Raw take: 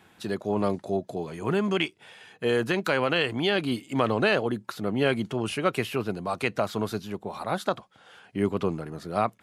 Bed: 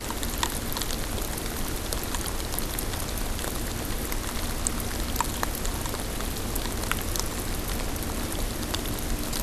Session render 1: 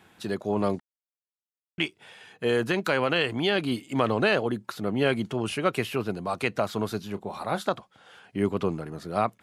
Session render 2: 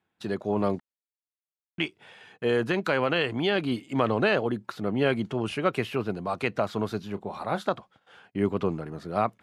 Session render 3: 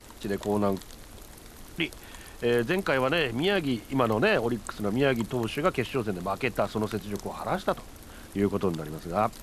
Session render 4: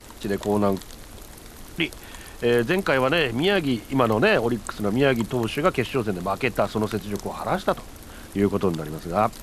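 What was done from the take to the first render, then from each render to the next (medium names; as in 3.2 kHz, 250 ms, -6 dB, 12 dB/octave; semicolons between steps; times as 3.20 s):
0.80–1.78 s: mute; 6.98–7.66 s: doubling 30 ms -13.5 dB
gate -52 dBFS, range -21 dB; low-pass 3.5 kHz 6 dB/octave
add bed -16 dB
trim +4.5 dB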